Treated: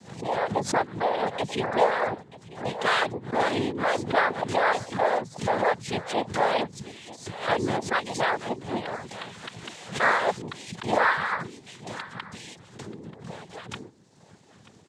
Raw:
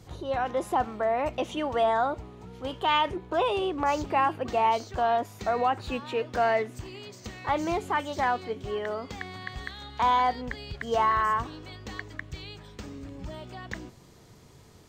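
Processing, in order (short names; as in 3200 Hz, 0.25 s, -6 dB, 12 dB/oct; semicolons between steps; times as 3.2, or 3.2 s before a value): octaver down 1 oct, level -2 dB; reverb removal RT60 1.4 s; noise vocoder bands 6; echo 0.934 s -18 dB; backwards sustainer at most 140 dB/s; gain +2 dB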